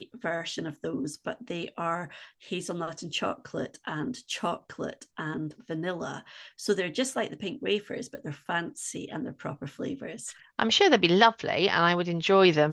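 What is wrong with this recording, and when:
8.15 pop -28 dBFS

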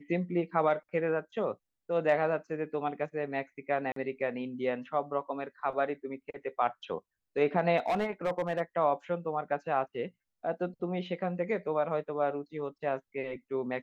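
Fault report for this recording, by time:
3.92–3.96 gap 43 ms
7.77–8.61 clipped -25 dBFS

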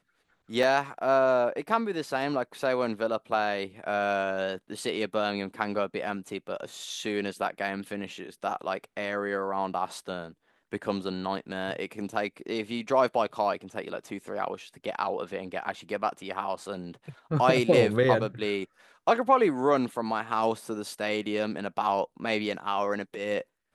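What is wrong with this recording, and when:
0.63 gap 2.4 ms

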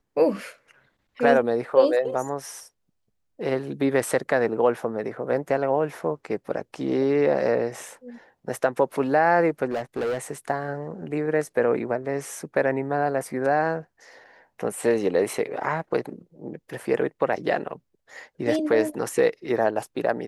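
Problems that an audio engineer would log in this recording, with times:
9.65–10.18 clipped -23 dBFS

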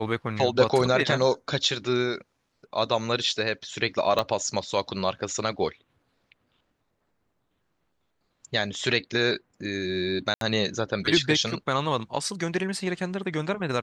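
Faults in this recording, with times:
4.19 pop -12 dBFS
10.34–10.41 gap 72 ms

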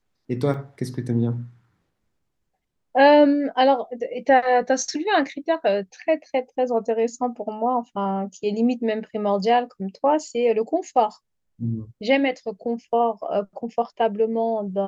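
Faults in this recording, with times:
0.54 gap 3.4 ms

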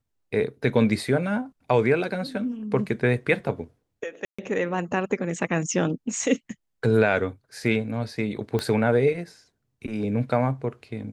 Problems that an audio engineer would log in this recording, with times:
4.25–4.38 gap 0.135 s
8.59 pop -14 dBFS

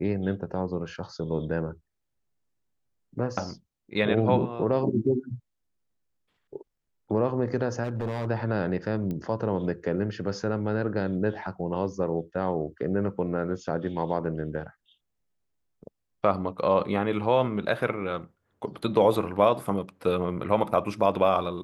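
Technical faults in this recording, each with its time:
7.83–8.27 clipped -25.5 dBFS
9.11 pop -22 dBFS

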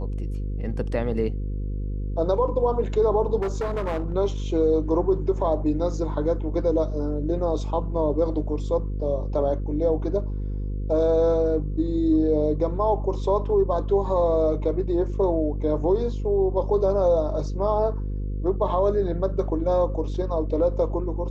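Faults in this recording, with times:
buzz 50 Hz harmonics 10 -28 dBFS
3.41–4.14 clipped -22.5 dBFS

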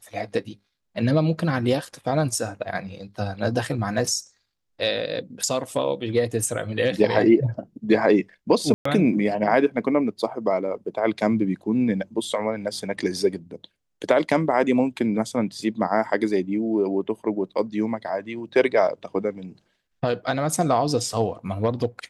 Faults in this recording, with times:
8.74–8.85 gap 0.114 s

